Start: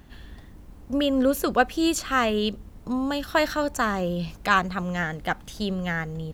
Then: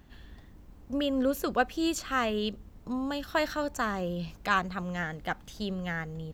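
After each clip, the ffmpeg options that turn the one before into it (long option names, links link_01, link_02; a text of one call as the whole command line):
ffmpeg -i in.wav -af "equalizer=frequency=10000:width_type=o:width=0.3:gain=-6.5,volume=-6dB" out.wav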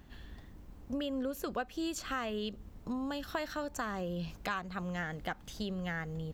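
ffmpeg -i in.wav -af "acompressor=threshold=-34dB:ratio=4" out.wav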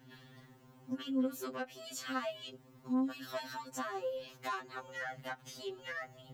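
ffmpeg -i in.wav -af "asoftclip=type=tanh:threshold=-30.5dB,highpass=57,afftfilt=real='re*2.45*eq(mod(b,6),0)':imag='im*2.45*eq(mod(b,6),0)':win_size=2048:overlap=0.75,volume=2dB" out.wav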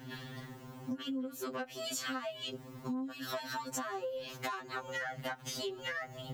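ffmpeg -i in.wav -af "acompressor=threshold=-46dB:ratio=16,volume=11dB" out.wav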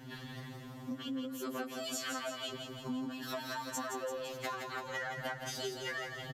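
ffmpeg -i in.wav -filter_complex "[0:a]asplit=2[link_01][link_02];[link_02]aecho=0:1:169|338|507|676|845|1014|1183|1352:0.501|0.301|0.18|0.108|0.065|0.039|0.0234|0.014[link_03];[link_01][link_03]amix=inputs=2:normalize=0,aresample=32000,aresample=44100,volume=-1.5dB" out.wav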